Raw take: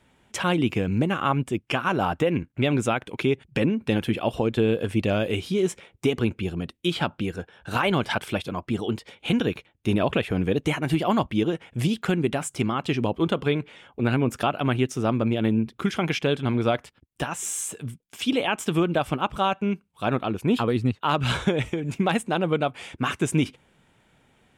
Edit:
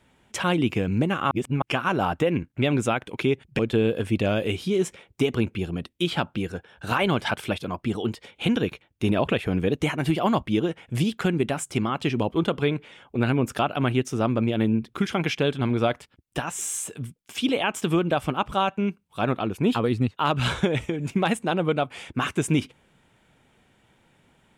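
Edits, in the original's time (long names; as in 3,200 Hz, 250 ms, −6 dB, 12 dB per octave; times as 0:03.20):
0:01.31–0:01.62: reverse
0:03.59–0:04.43: remove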